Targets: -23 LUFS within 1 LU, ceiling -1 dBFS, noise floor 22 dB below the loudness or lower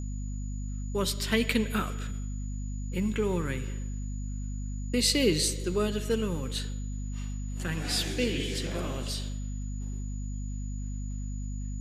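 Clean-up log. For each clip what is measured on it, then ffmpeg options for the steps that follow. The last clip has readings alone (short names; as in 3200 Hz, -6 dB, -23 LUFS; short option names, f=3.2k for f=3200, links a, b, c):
hum 50 Hz; harmonics up to 250 Hz; hum level -32 dBFS; steady tone 6900 Hz; tone level -51 dBFS; loudness -31.5 LUFS; peak -9.5 dBFS; loudness target -23.0 LUFS
-> -af "bandreject=f=50:t=h:w=4,bandreject=f=100:t=h:w=4,bandreject=f=150:t=h:w=4,bandreject=f=200:t=h:w=4,bandreject=f=250:t=h:w=4"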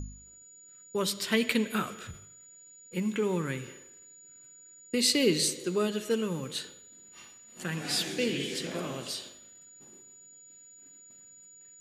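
hum none; steady tone 6900 Hz; tone level -51 dBFS
-> -af "bandreject=f=6.9k:w=30"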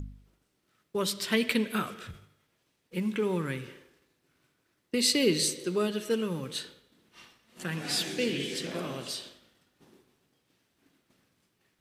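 steady tone none; loudness -30.0 LUFS; peak -10.0 dBFS; loudness target -23.0 LUFS
-> -af "volume=7dB"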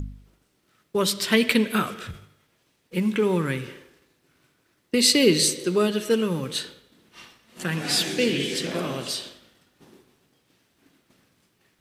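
loudness -23.0 LUFS; peak -3.0 dBFS; noise floor -68 dBFS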